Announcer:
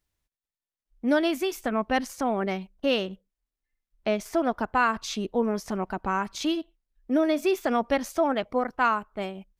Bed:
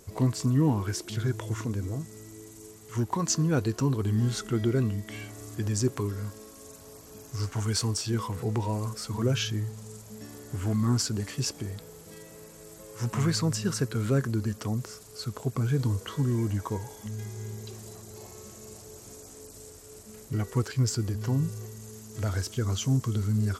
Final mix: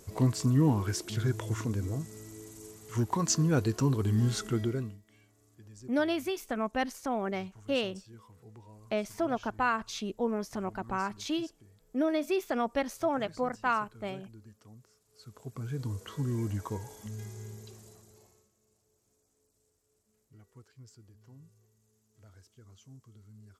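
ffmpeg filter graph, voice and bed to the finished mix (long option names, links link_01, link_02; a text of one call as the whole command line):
ffmpeg -i stem1.wav -i stem2.wav -filter_complex "[0:a]adelay=4850,volume=-5.5dB[link_01];[1:a]volume=18dB,afade=type=out:start_time=4.46:duration=0.53:silence=0.0749894,afade=type=in:start_time=15.04:duration=1.4:silence=0.112202,afade=type=out:start_time=17.24:duration=1.25:silence=0.0707946[link_02];[link_01][link_02]amix=inputs=2:normalize=0" out.wav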